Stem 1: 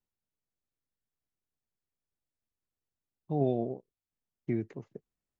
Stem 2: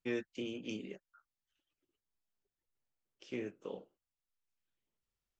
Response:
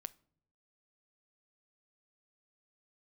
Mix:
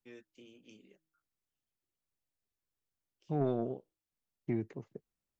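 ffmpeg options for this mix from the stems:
-filter_complex "[0:a]volume=-1.5dB,asplit=2[a][b];[1:a]highshelf=f=5.7k:g=8,bandreject=f=159.7:t=h:w=4,bandreject=f=319.4:t=h:w=4,volume=-16.5dB[c];[b]apad=whole_len=237710[d];[c][d]sidechaincompress=threshold=-33dB:ratio=8:attack=16:release=177[e];[a][e]amix=inputs=2:normalize=0,asoftclip=type=tanh:threshold=-22dB"

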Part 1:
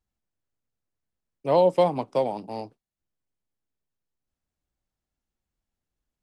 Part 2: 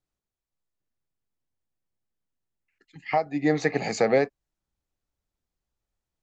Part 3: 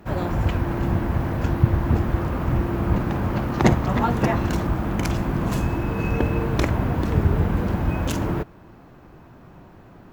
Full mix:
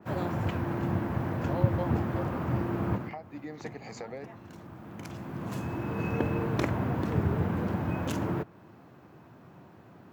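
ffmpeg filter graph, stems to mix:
-filter_complex "[0:a]volume=-16dB[a];[1:a]acompressor=threshold=-25dB:ratio=6,volume=-12.5dB,asplit=2[b][c];[2:a]highpass=f=95:w=0.5412,highpass=f=95:w=1.3066,volume=-5.5dB[d];[c]apad=whole_len=446726[e];[d][e]sidechaincompress=threshold=-59dB:ratio=5:attack=8.9:release=1150[f];[a][b][f]amix=inputs=3:normalize=0,adynamicequalizer=threshold=0.00355:dfrequency=2600:dqfactor=0.7:tfrequency=2600:tqfactor=0.7:attack=5:release=100:ratio=0.375:range=2:mode=cutabove:tftype=highshelf"

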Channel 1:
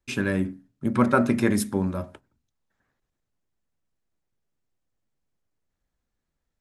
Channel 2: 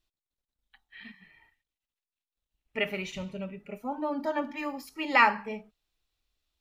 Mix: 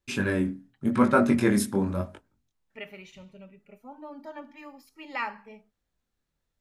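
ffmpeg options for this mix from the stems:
-filter_complex "[0:a]flanger=delay=19.5:depth=6.2:speed=0.88,volume=2.5dB[a];[1:a]volume=-11dB[b];[a][b]amix=inputs=2:normalize=0"

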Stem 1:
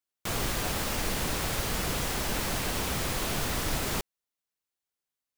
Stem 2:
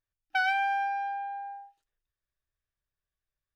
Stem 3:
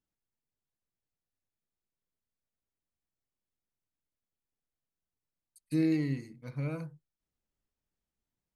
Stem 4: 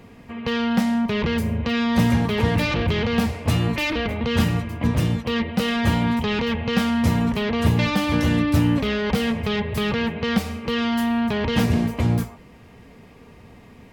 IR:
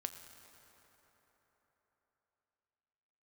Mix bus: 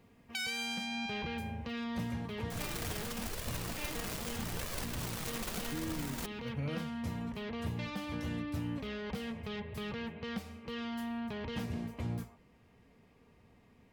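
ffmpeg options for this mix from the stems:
-filter_complex "[0:a]flanger=delay=1.7:depth=4.8:regen=-4:speed=0.82:shape=sinusoidal,acrusher=bits=6:dc=4:mix=0:aa=0.000001,adelay=2250,volume=-5dB,asplit=2[a][b];[b]volume=-22dB[c];[1:a]asoftclip=type=tanh:threshold=-34.5dB,highpass=1.3k,highshelf=f=1.9k:t=q:w=1.5:g=9,volume=2.5dB[d];[2:a]acompressor=threshold=-34dB:ratio=2.5,volume=1dB[e];[3:a]volume=-17dB[f];[4:a]atrim=start_sample=2205[g];[c][g]afir=irnorm=-1:irlink=0[h];[a][d][e][f][h]amix=inputs=5:normalize=0,alimiter=level_in=3.5dB:limit=-24dB:level=0:latency=1:release=401,volume=-3.5dB"

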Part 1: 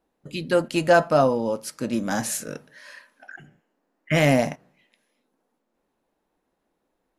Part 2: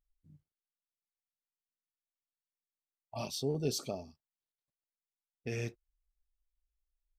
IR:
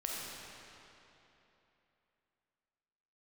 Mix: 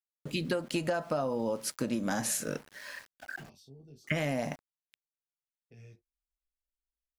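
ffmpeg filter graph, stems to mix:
-filter_complex "[0:a]acompressor=threshold=-22dB:ratio=3,aeval=exprs='val(0)*gte(abs(val(0)),0.00355)':c=same,volume=0.5dB[a];[1:a]acrossover=split=230[b][c];[c]acompressor=threshold=-45dB:ratio=6[d];[b][d]amix=inputs=2:normalize=0,alimiter=level_in=8.5dB:limit=-24dB:level=0:latency=1:release=86,volume=-8.5dB,flanger=delay=18.5:depth=3.6:speed=0.73,adelay=250,volume=-9.5dB[e];[a][e]amix=inputs=2:normalize=0,acompressor=threshold=-28dB:ratio=5"

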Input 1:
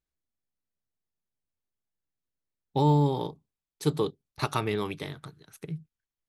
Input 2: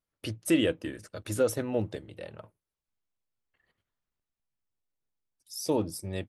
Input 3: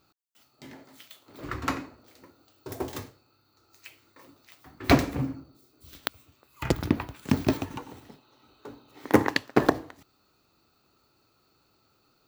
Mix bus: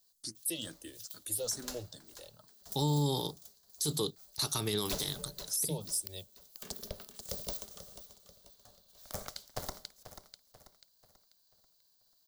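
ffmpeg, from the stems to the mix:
-filter_complex "[0:a]volume=-3dB[a];[1:a]asplit=2[b][c];[c]afreqshift=2.3[d];[b][d]amix=inputs=2:normalize=1,volume=-12dB[e];[2:a]aeval=exprs='val(0)*sin(2*PI*310*n/s)':c=same,volume=-17dB,asplit=2[f][g];[g]volume=-13dB,aecho=0:1:488|976|1464|1952|2440|2928:1|0.41|0.168|0.0689|0.0283|0.0116[h];[a][e][f][h]amix=inputs=4:normalize=0,acrossover=split=370[i][j];[j]acompressor=threshold=-34dB:ratio=2.5[k];[i][k]amix=inputs=2:normalize=0,aexciter=amount=10.4:drive=5.2:freq=3.6k,alimiter=limit=-22dB:level=0:latency=1:release=24"

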